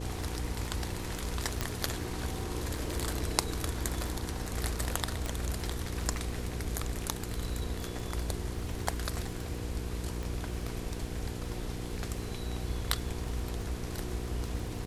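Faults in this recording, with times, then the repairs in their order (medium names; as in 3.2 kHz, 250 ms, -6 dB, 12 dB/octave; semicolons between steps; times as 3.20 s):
crackle 27 per s -39 dBFS
hum 60 Hz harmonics 8 -39 dBFS
1.61 s: pop -14 dBFS
5.26 s: pop
10.23 s: pop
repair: de-click; de-hum 60 Hz, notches 8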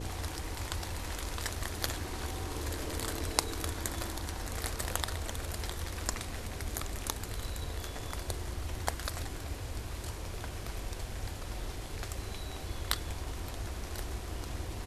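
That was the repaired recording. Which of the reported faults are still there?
10.23 s: pop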